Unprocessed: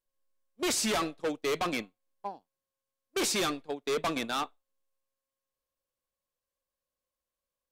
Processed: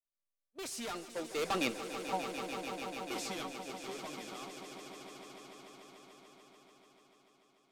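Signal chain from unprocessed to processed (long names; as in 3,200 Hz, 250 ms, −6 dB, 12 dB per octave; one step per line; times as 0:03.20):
source passing by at 0:01.90, 23 m/s, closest 1.3 metres
echo that builds up and dies away 146 ms, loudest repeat 5, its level −11.5 dB
level +14 dB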